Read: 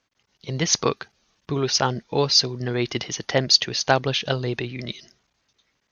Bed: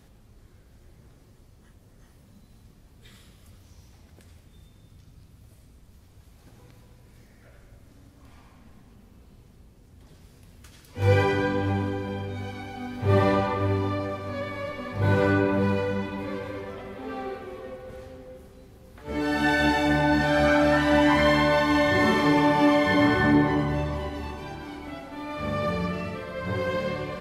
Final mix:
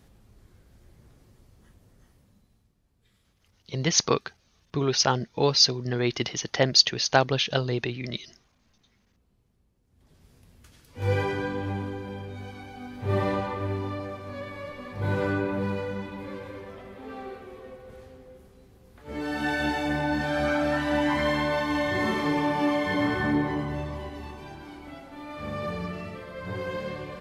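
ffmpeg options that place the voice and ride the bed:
-filter_complex "[0:a]adelay=3250,volume=0.841[s0];[1:a]volume=2.82,afade=t=out:st=1.73:d=0.98:silence=0.199526,afade=t=in:st=9.86:d=0.45:silence=0.266073[s1];[s0][s1]amix=inputs=2:normalize=0"

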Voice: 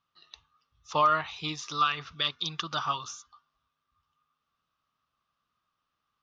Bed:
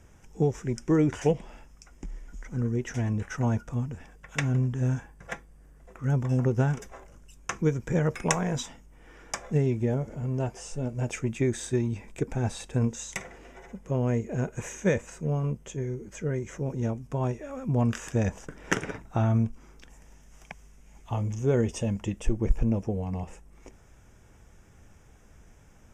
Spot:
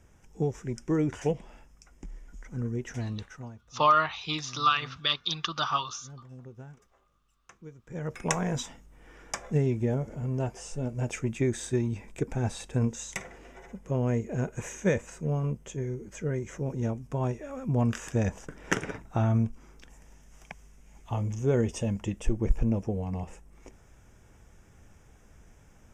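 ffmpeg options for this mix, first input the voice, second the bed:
-filter_complex "[0:a]adelay=2850,volume=1.26[s0];[1:a]volume=6.68,afade=t=out:st=2.94:d=0.6:silence=0.133352,afade=t=in:st=7.85:d=0.57:silence=0.0944061[s1];[s0][s1]amix=inputs=2:normalize=0"

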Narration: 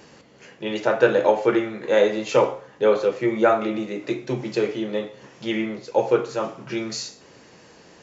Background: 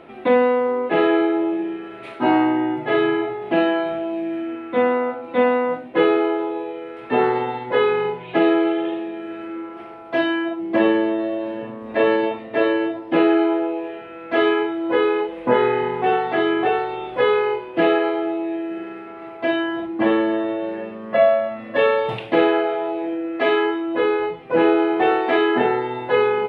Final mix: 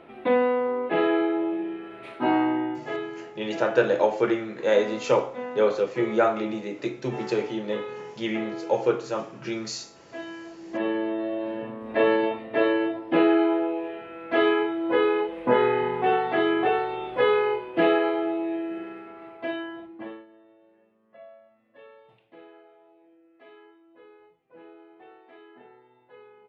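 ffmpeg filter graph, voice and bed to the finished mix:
-filter_complex "[0:a]adelay=2750,volume=0.668[s0];[1:a]volume=2.66,afade=t=out:st=2.55:d=0.55:silence=0.251189,afade=t=in:st=10.55:d=0.97:silence=0.199526,afade=t=out:st=18.55:d=1.71:silence=0.0334965[s1];[s0][s1]amix=inputs=2:normalize=0"

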